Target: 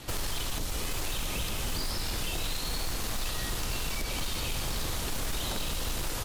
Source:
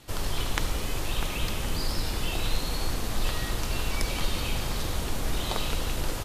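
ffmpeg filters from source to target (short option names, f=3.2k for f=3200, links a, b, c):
-filter_complex "[0:a]acrossover=split=900|4000[a][b][c];[a]acompressor=threshold=-38dB:ratio=4[d];[b]acompressor=threshold=-48dB:ratio=4[e];[c]acompressor=threshold=-44dB:ratio=4[f];[d][e][f]amix=inputs=3:normalize=0,aeval=exprs='0.0224*(abs(mod(val(0)/0.0224+3,4)-2)-1)':c=same,volume=7.5dB"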